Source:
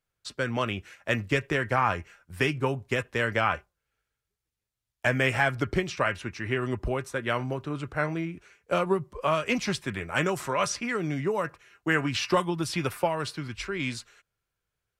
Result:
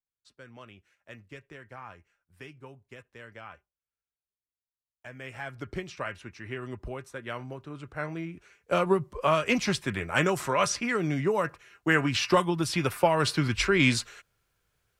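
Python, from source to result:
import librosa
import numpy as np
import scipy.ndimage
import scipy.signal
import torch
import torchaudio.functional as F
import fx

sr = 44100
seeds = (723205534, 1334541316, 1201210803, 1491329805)

y = fx.gain(x, sr, db=fx.line((5.09, -20.0), (5.75, -8.5), (7.75, -8.5), (8.89, 1.5), (12.94, 1.5), (13.37, 9.0)))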